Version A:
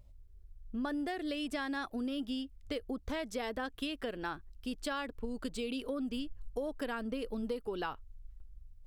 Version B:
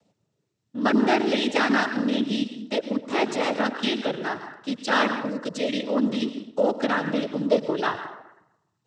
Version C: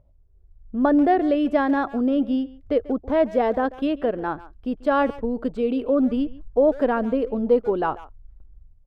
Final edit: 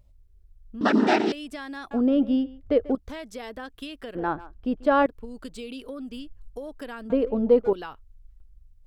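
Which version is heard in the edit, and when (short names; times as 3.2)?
A
0.81–1.32 from B
1.91–2.95 from C
4.15–5.06 from C
7.1–7.73 from C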